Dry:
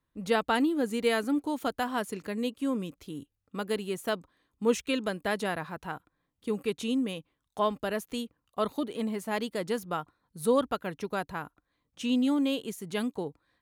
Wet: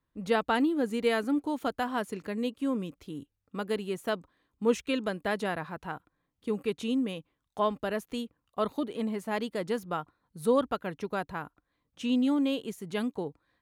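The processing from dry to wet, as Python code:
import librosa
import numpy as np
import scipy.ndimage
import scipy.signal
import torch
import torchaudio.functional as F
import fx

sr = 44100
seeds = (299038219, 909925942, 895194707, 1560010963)

y = fx.high_shelf(x, sr, hz=4400.0, db=-6.5)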